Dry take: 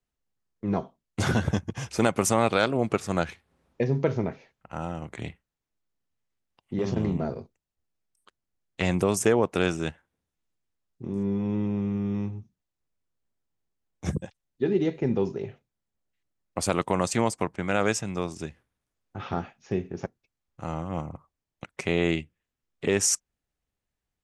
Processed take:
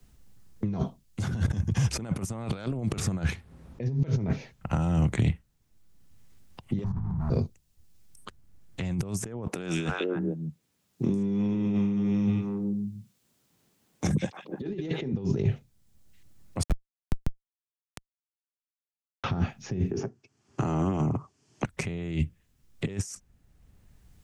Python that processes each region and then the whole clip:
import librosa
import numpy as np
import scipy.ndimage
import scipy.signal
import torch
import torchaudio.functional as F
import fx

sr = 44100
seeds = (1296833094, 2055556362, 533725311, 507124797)

y = fx.chain(x, sr, fx.leveller(passes=5),
    fx.curve_eq(hz=(100.0, 310.0, 540.0, 920.0, 1800.0, 2800.0), db=(0, -16, -23, 1, -15, -29)), at=(6.84, 7.3))
y = fx.chain(y, sr, fx.highpass(hz=230.0, slope=12),
    fx.echo_stepped(ms=149, hz=2800.0, octaves=-1.4, feedback_pct=70, wet_db=-3), at=(9.47, 15.13))
y = fx.chain(y, sr, fx.hum_notches(base_hz=60, count=6),
    fx.level_steps(step_db=11),
    fx.schmitt(flips_db=-20.5), at=(16.63, 19.24))
y = fx.chain(y, sr, fx.cabinet(low_hz=130.0, low_slope=24, high_hz=7100.0, hz=(170.0, 400.0, 2100.0, 3800.0), db=(-10, 8, -4, -10)),
    fx.notch(hz=520.0, q=5.2),
    fx.band_squash(depth_pct=70), at=(19.91, 21.65))
y = fx.over_compress(y, sr, threshold_db=-36.0, ratio=-1.0)
y = fx.bass_treble(y, sr, bass_db=14, treble_db=4)
y = fx.band_squash(y, sr, depth_pct=40)
y = y * librosa.db_to_amplitude(-1.0)